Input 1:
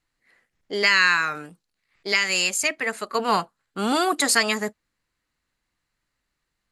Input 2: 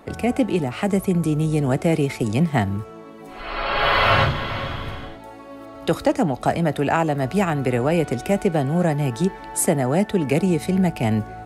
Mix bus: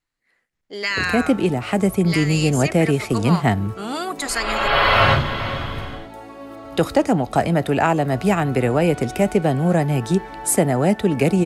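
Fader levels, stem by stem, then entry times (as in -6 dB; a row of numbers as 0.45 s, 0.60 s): -5.0 dB, +2.0 dB; 0.00 s, 0.90 s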